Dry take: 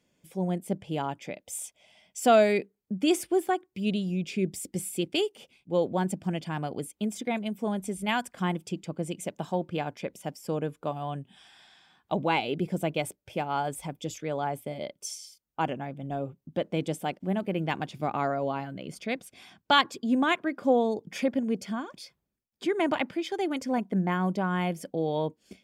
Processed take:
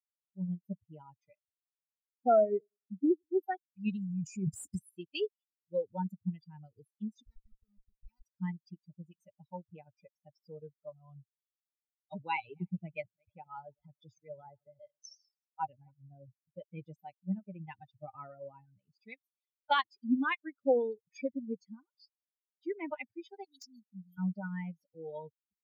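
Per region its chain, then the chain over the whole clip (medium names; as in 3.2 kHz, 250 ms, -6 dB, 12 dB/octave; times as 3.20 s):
1.40–3.43 s: Bessel low-pass 1.1 kHz, order 6 + feedback delay 97 ms, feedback 52%, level -17 dB
3.97–4.79 s: resonant high shelf 5.7 kHz +12.5 dB, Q 3 + transient shaper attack -1 dB, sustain +11 dB
7.25–8.22 s: low-pass 3 kHz 24 dB/octave + Schmitt trigger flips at -28.5 dBFS + compression 10:1, threshold -38 dBFS
12.17–15.91 s: backward echo that repeats 156 ms, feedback 47%, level -13.5 dB + low-pass 6.2 kHz 24 dB/octave
23.44–24.18 s: Chebyshev band-stop 270–3500 Hz, order 4 + tone controls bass -9 dB, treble +15 dB + integer overflow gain 20 dB
whole clip: expander on every frequency bin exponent 3; de-esser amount 90%; treble shelf 5.9 kHz -11.5 dB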